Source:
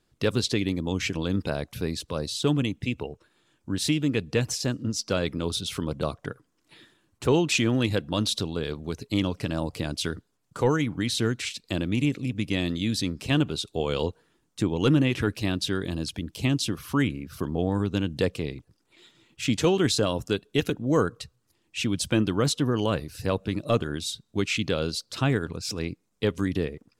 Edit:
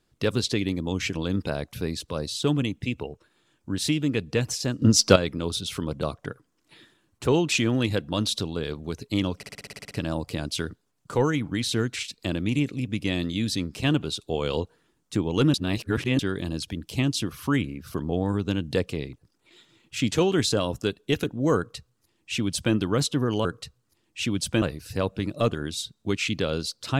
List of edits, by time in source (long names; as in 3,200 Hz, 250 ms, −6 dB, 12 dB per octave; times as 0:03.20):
0:04.82–0:05.16: clip gain +11 dB
0:09.37: stutter 0.06 s, 10 plays
0:15.00–0:15.65: reverse
0:21.03–0:22.20: duplicate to 0:22.91